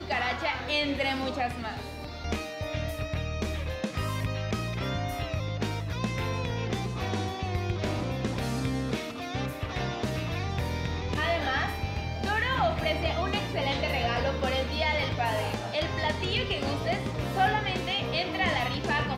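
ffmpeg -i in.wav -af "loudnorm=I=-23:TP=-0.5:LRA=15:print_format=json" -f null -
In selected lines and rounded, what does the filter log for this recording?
"input_i" : "-29.6",
"input_tp" : "-13.8",
"input_lra" : "4.0",
"input_thresh" : "-39.6",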